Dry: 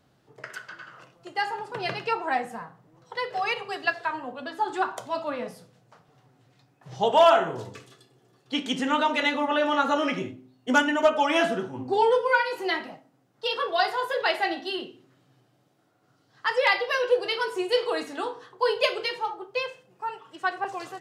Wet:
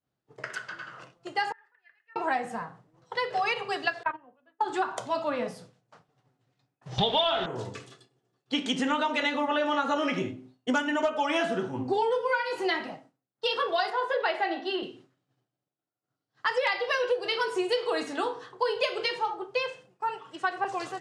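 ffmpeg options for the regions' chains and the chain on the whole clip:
-filter_complex "[0:a]asettb=1/sr,asplit=3[a][b][c];[a]atrim=end=1.524[d];[b]atrim=start=1.52:end=2.16,asetpts=PTS-STARTPTS,afade=t=in:d=0.004:c=qsin,afade=t=out:st=0.636:d=0.004:c=qsin,bandpass=f=1.8k:t=q:w=19,acompressor=threshold=-57dB:ratio=2.5:attack=3.2:release=140:knee=1:detection=peak[e];[c]atrim=start=2.156[f];[d][e]acrossfade=d=0.004:c1=hsin:c2=qsin[g];[g][f]acrossfade=d=0.004:c1=qsin:c2=hsin,asettb=1/sr,asplit=3[h][i][j];[h]atrim=end=4.034[k];[i]atrim=start=4.03:end=4.61,asetpts=PTS-STARTPTS,afade=t=in:d=0.004:c=qsin,afade=t=out:st=0.576:d=0.004:c=qsin,lowpass=f=2.7k:w=0.5412,lowpass=f=2.7k:w=1.3066,agate=range=-22dB:threshold=-30dB:ratio=16:release=100:detection=peak[l];[j]atrim=start=4.606[m];[k][l]acrossfade=d=0.004:c1=hsin:c2=qsin[n];[n][m]acrossfade=d=0.004:c1=qsin:c2=hsin,asettb=1/sr,asplit=3[o][p][q];[o]atrim=end=6.984[r];[p]atrim=start=6.98:end=7.46,asetpts=PTS-STARTPTS,afade=t=in:d=0.004:c=qsin,afade=t=out:st=0.476:d=0.004:c=qsin,aeval=exprs='val(0)+0.5*0.0266*sgn(val(0))':c=same,lowpass=f=3.6k:t=q:w=13,lowshelf=f=210:g=10.5[s];[q]atrim=start=7.456[t];[r][s]acrossfade=d=0.004:c1=hsin:c2=qsin[u];[u][t]acrossfade=d=0.004:c1=qsin:c2=hsin,asettb=1/sr,asplit=3[v][w][x];[v]atrim=end=13.904[y];[w]atrim=start=13.9:end=14.83,asetpts=PTS-STARTPTS,afade=t=in:d=0.004:c=qsin,afade=t=out:st=0.926:d=0.004:c=qsin,highpass=280,aemphasis=mode=reproduction:type=75fm[z];[x]atrim=start=14.826[aa];[y][z]acrossfade=d=0.004:c1=hsin:c2=qsin[ab];[ab][aa]acrossfade=d=0.004:c1=qsin:c2=hsin,agate=range=-33dB:threshold=-50dB:ratio=3:detection=peak,lowpass=f=9.8k:w=0.5412,lowpass=f=9.8k:w=1.3066,acompressor=threshold=-26dB:ratio=6,volume=2.5dB"

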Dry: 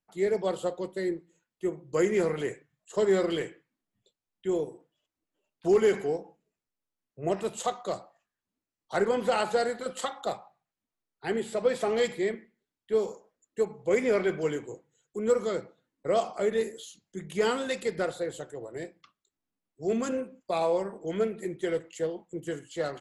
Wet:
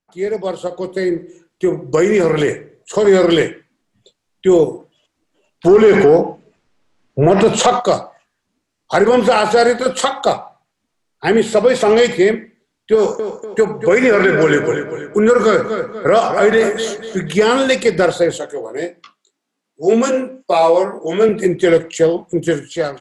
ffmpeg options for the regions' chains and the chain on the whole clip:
-filter_complex "[0:a]asettb=1/sr,asplit=3[a][b][c];[a]atrim=end=0.674[d];[b]atrim=start=0.67:end=3.05,asetpts=PTS-STARTPTS,afade=t=in:d=0.004:c=qsin,afade=t=out:st=2.376:d=0.004:c=qsin,acompressor=threshold=-28dB:ratio=6:attack=3.2:release=140:knee=1:detection=peak,asplit=2[e][f];[f]adelay=60,lowpass=f=2.1k:p=1,volume=-17dB,asplit=2[g][h];[h]adelay=60,lowpass=f=2.1k:p=1,volume=0.54,asplit=2[i][j];[j]adelay=60,lowpass=f=2.1k:p=1,volume=0.54,asplit=2[k][l];[l]adelay=60,lowpass=f=2.1k:p=1,volume=0.54,asplit=2[m][n];[n]adelay=60,lowpass=f=2.1k:p=1,volume=0.54[o];[e][g][i][k][m][o]amix=inputs=6:normalize=0,atrim=end_sample=104958[p];[c]atrim=start=3.046[q];[d][p]acrossfade=d=0.004:c1=hsin:c2=qsin[r];[r][q]acrossfade=d=0.004:c1=qsin:c2=hsin,asettb=1/sr,asplit=3[s][t][u];[s]atrim=end=5.684[v];[t]atrim=start=5.68:end=7.8,asetpts=PTS-STARTPTS,afade=t=in:d=0.004:c=qsin,afade=t=out:st=2.116:d=0.004:c=qsin,aemphasis=mode=reproduction:type=50fm,acompressor=threshold=-29dB:ratio=6:attack=3.2:release=140:knee=1:detection=peak,aeval=exprs='0.119*sin(PI/2*1.78*val(0)/0.119)':c=same[w];[u]atrim=start=7.796[x];[v][w]acrossfade=d=0.004:c1=hsin:c2=qsin[y];[y][x]acrossfade=d=0.004:c1=qsin:c2=hsin,asettb=1/sr,asplit=3[z][aa][ab];[z]atrim=end=12.954[ac];[aa]atrim=start=12.95:end=17.35,asetpts=PTS-STARTPTS,afade=t=in:d=0.004:c=qsin,afade=t=out:st=4.396:d=0.004:c=qsin,equalizer=f=1.5k:w=2.1:g=10,acompressor=threshold=-26dB:ratio=4:attack=3.2:release=140:knee=1:detection=peak,asplit=2[ad][ae];[ae]adelay=242,lowpass=f=4k:p=1,volume=-9.5dB,asplit=2[af][ag];[ag]adelay=242,lowpass=f=4k:p=1,volume=0.42,asplit=2[ah][ai];[ai]adelay=242,lowpass=f=4k:p=1,volume=0.42,asplit=2[aj][ak];[ak]adelay=242,lowpass=f=4k:p=1,volume=0.42,asplit=2[al][am];[am]adelay=242,lowpass=f=4k:p=1,volume=0.42[an];[ad][af][ah][aj][al][an]amix=inputs=6:normalize=0,atrim=end_sample=194040[ao];[ab]atrim=start=17.346[ap];[ac][ao]acrossfade=d=0.004:c1=hsin:c2=qsin[aq];[aq][ap]acrossfade=d=0.004:c1=qsin:c2=hsin,asettb=1/sr,asplit=3[ar][as][at];[ar]atrim=end=18.384[au];[as]atrim=start=18.38:end=21.29,asetpts=PTS-STARTPTS,afade=t=in:d=0.004:c=qsin,afade=t=out:st=2.906:d=0.004:c=qsin,highpass=250,flanger=delay=17:depth=2.2:speed=1.8[av];[at]atrim=start=21.286[aw];[au][av]acrossfade=d=0.004:c1=hsin:c2=qsin[ax];[ax][aw]acrossfade=d=0.004:c1=qsin:c2=hsin,lowpass=8.5k,dynaudnorm=f=660:g=3:m=14.5dB,alimiter=level_in=7.5dB:limit=-1dB:release=50:level=0:latency=1,volume=-2dB"

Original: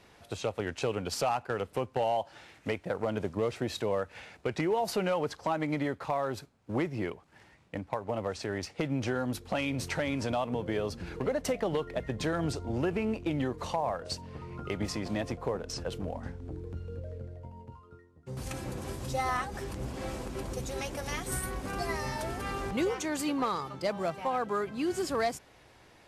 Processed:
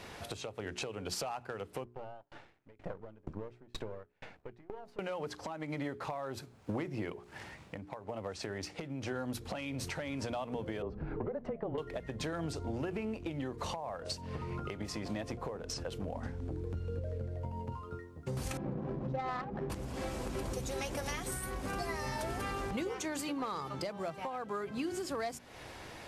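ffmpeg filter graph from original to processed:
-filter_complex "[0:a]asettb=1/sr,asplit=3[a][b][c];[a]atrim=end=1.844[d];[b]atrim=start=1.84:end=4.99,asetpts=PTS-STARTPTS,afade=t=in:d=0.004:c=qsin,afade=t=out:st=3.146:d=0.004:c=qsin,aeval=exprs='if(lt(val(0),0),0.251*val(0),val(0))':c=same,lowpass=f=1.3k:p=1,aeval=exprs='val(0)*pow(10,-40*if(lt(mod(2.1*n/s,1),2*abs(2.1)/1000),1-mod(2.1*n/s,1)/(2*abs(2.1)/1000),(mod(2.1*n/s,1)-2*abs(2.1)/1000)/(1-2*abs(2.1)/1000))/20)':c=same[e];[c]atrim=start=4.986[f];[d][e]acrossfade=d=0.004:c1=hsin:c2=qsin[g];[g][f]acrossfade=d=0.004:c1=qsin:c2=hsin,asettb=1/sr,asplit=3[h][i][j];[h]atrim=end=10.824[k];[i]atrim=start=10.82:end=11.78,asetpts=PTS-STARTPTS,afade=t=in:d=0.004:c=qsin,afade=t=out:st=0.956:d=0.004:c=qsin,lowpass=1.1k,afreqshift=-25[l];[j]atrim=start=11.776[m];[k][l]acrossfade=d=0.004:c1=hsin:c2=qsin[n];[n][m]acrossfade=d=0.004:c1=qsin:c2=hsin,asettb=1/sr,asplit=3[o][p][q];[o]atrim=end=18.574[r];[p]atrim=start=18.57:end=19.7,asetpts=PTS-STARTPTS,afade=t=in:d=0.004:c=qsin,afade=t=out:st=1.126:d=0.004:c=qsin,lowpass=8k,lowshelf=f=120:t=q:w=3:g=-7,adynamicsmooth=sensitivity=1.5:basefreq=710[s];[q]atrim=start=19.696[t];[r][s]acrossfade=d=0.004:c1=hsin:c2=qsin[u];[u][t]acrossfade=d=0.004:c1=qsin:c2=hsin,bandreject=f=60:t=h:w=6,bandreject=f=120:t=h:w=6,bandreject=f=180:t=h:w=6,bandreject=f=240:t=h:w=6,bandreject=f=300:t=h:w=6,bandreject=f=360:t=h:w=6,bandreject=f=420:t=h:w=6,acompressor=threshold=-45dB:ratio=6,alimiter=level_in=12.5dB:limit=-24dB:level=0:latency=1:release=358,volume=-12.5dB,volume=10dB"

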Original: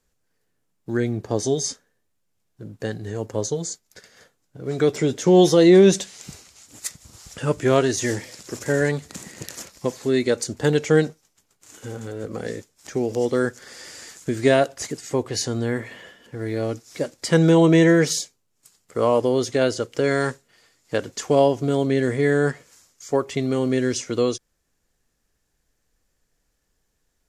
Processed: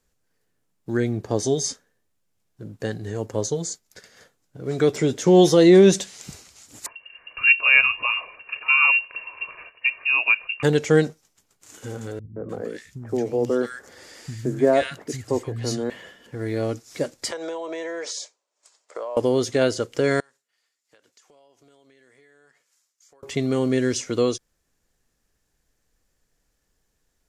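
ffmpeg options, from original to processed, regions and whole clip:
-filter_complex "[0:a]asettb=1/sr,asplit=3[a][b][c];[a]atrim=end=6.864[d];[b]atrim=start=6.86:end=10.63,asetpts=PTS-STARTPTS,afade=t=in:d=0.004:c=qsin,afade=t=out:st=3.766:d=0.004:c=qsin,equalizer=f=160:t=o:w=0.32:g=13.5,aecho=1:1:1.7:0.48,atrim=end_sample=166257,lowpass=f=2.5k:t=q:w=0.5098,lowpass=f=2.5k:t=q:w=0.6013,lowpass=f=2.5k:t=q:w=0.9,lowpass=f=2.5k:t=q:w=2.563,afreqshift=-2900[e];[c]atrim=start=10.626[f];[d][e]acrossfade=d=0.004:c1=hsin:c2=qsin[g];[g][f]acrossfade=d=0.004:c1=qsin:c2=hsin,asettb=1/sr,asplit=3[h][i][j];[h]atrim=end=12.194[k];[i]atrim=start=12.19:end=15.9,asetpts=PTS-STARTPTS,afade=t=in:d=0.004:c=qsin,afade=t=out:st=3.706:d=0.004:c=qsin,equalizer=f=7.2k:t=o:w=2.4:g=-6.5,acrossover=split=170|1500[l][m][n];[m]adelay=170[o];[n]adelay=300[p];[l][o][p]amix=inputs=3:normalize=0,atrim=end_sample=163611[q];[j]atrim=start=15.896[r];[k][q]acrossfade=d=0.004:c1=hsin:c2=qsin[s];[s][r]acrossfade=d=0.004:c1=qsin:c2=hsin,asettb=1/sr,asplit=3[t][u][v];[t]atrim=end=17.314[w];[u]atrim=start=17.31:end=19.17,asetpts=PTS-STARTPTS,afade=t=in:d=0.004:c=qsin,afade=t=out:st=1.856:d=0.004:c=qsin,highpass=f=400:w=0.5412,highpass=f=400:w=1.3066,equalizer=f=410:t=q:w=4:g=-3,equalizer=f=600:t=q:w=4:g=8,equalizer=f=970:t=q:w=4:g=6,lowpass=f=8k:w=0.5412,lowpass=f=8k:w=1.3066,bandreject=f=2.9k:w=27,acompressor=threshold=-27dB:ratio=20:attack=3.2:release=140:knee=1:detection=peak[x];[v]atrim=start=19.166[y];[w][x]acrossfade=d=0.004:c1=hsin:c2=qsin[z];[z][y]acrossfade=d=0.004:c1=qsin:c2=hsin,asettb=1/sr,asplit=3[aa][ab][ac];[aa]atrim=end=20.204[ad];[ab]atrim=start=20.2:end=23.23,asetpts=PTS-STARTPTS,afade=t=in:d=0.004:c=qsin,afade=t=out:st=3.026:d=0.004:c=qsin,lowpass=f=1.3k:p=1,aderivative,acompressor=threshold=-52dB:ratio=12:attack=3.2:release=140:knee=1:detection=peak[ae];[ac]atrim=start=23.226[af];[ad][ae]acrossfade=d=0.004:c1=hsin:c2=qsin[ag];[ag][af]acrossfade=d=0.004:c1=qsin:c2=hsin"

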